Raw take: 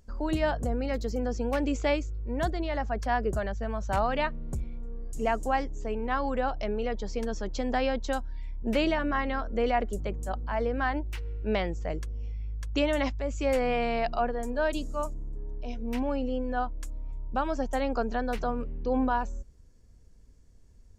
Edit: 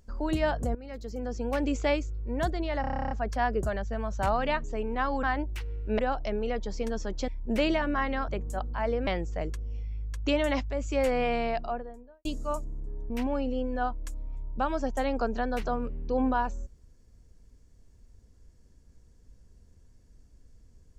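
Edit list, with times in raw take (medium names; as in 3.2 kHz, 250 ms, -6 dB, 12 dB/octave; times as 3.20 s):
0.75–1.65 s: fade in linear, from -16.5 dB
2.81 s: stutter 0.03 s, 11 plays
4.34–5.76 s: delete
7.64–8.45 s: delete
9.45–10.01 s: delete
10.80–11.56 s: move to 6.35 s
13.79–14.74 s: studio fade out
15.59–15.86 s: delete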